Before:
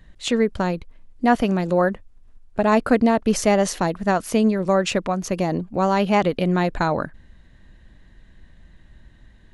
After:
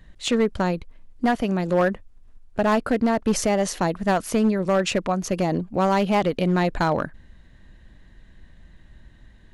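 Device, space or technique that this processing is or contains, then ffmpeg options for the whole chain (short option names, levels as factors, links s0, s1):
limiter into clipper: -af "alimiter=limit=0.355:level=0:latency=1:release=478,asoftclip=type=hard:threshold=0.2"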